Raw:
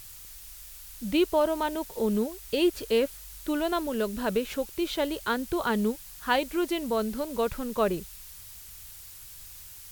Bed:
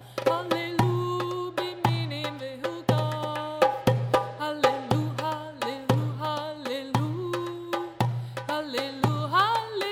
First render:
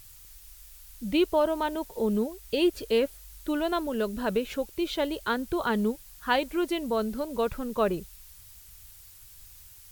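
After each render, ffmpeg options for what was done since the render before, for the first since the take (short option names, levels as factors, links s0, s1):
-af "afftdn=nr=6:nf=-46"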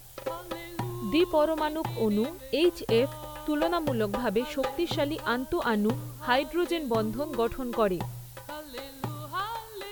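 -filter_complex "[1:a]volume=0.299[s0];[0:a][s0]amix=inputs=2:normalize=0"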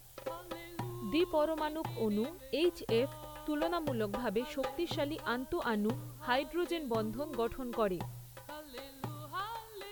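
-af "volume=0.447"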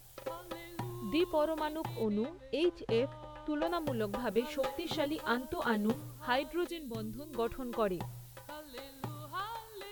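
-filter_complex "[0:a]asettb=1/sr,asplit=3[s0][s1][s2];[s0]atrim=end=2.034[s3];[s1]atrim=start=2.03:end=3.67,asetpts=PTS-STARTPTS,afade=t=in:d=0.004:c=qsin,afade=t=out:st=1.636:d=0.004:c=qsin,adynamicsmooth=sensitivity=6:basefreq=3400[s4];[s2]atrim=start=3.666[s5];[s3][s4]acrossfade=d=0.004:c1=hsin:c2=qsin[s6];[s6][s5]acrossfade=d=0.004:c1=qsin:c2=hsin,asettb=1/sr,asplit=3[s7][s8][s9];[s7]atrim=end=4.304[s10];[s8]atrim=start=4.3:end=6.02,asetpts=PTS-STARTPTS,afade=t=in:d=0.004:c=qsin,afade=t=out:st=1.716:d=0.004:c=qsin,asplit=2[s11][s12];[s12]adelay=13,volume=0.708[s13];[s11][s13]amix=inputs=2:normalize=0,atrim=end_sample=75852[s14];[s9]atrim=start=6.016[s15];[s10][s14]acrossfade=d=0.004:c1=hsin:c2=qsin[s16];[s16][s15]acrossfade=d=0.004:c1=qsin:c2=hsin,asettb=1/sr,asplit=3[s17][s18][s19];[s17]atrim=end=6.674[s20];[s18]atrim=start=6.67:end=7.35,asetpts=PTS-STARTPTS,afade=t=in:d=0.004:c=qsin,afade=t=out:st=0.676:d=0.004:c=qsin,equalizer=f=880:t=o:w=2.1:g=-15[s21];[s19]atrim=start=7.346[s22];[s20][s21]acrossfade=d=0.004:c1=hsin:c2=qsin[s23];[s23][s22]acrossfade=d=0.004:c1=qsin:c2=hsin"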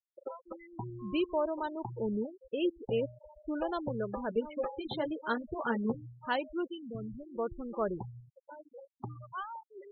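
-af "afftfilt=real='re*gte(hypot(re,im),0.0251)':imag='im*gte(hypot(re,im),0.0251)':win_size=1024:overlap=0.75"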